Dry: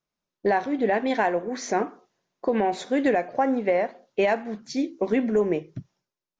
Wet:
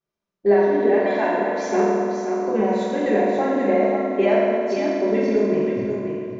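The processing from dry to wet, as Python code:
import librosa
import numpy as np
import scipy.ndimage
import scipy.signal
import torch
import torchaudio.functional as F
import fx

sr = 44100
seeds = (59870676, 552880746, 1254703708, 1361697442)

p1 = fx.high_shelf(x, sr, hz=4100.0, db=-8.0)
p2 = p1 + fx.echo_feedback(p1, sr, ms=534, feedback_pct=18, wet_db=-6.0, dry=0)
p3 = fx.rev_fdn(p2, sr, rt60_s=2.4, lf_ratio=1.0, hf_ratio=0.7, size_ms=15.0, drr_db=-8.0)
y = p3 * 10.0 ** (-5.0 / 20.0)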